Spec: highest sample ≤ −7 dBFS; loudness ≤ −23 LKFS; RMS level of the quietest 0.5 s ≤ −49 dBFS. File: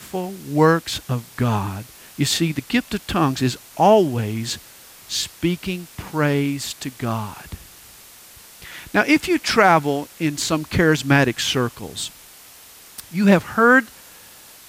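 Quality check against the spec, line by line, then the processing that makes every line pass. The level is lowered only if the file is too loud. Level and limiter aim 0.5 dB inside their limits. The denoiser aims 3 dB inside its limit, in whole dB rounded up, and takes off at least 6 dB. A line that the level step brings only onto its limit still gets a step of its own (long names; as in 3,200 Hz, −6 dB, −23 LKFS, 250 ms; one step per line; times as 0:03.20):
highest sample −2.5 dBFS: out of spec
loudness −20.0 LKFS: out of spec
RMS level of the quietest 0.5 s −45 dBFS: out of spec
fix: broadband denoise 6 dB, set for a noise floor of −45 dBFS
level −3.5 dB
brickwall limiter −7.5 dBFS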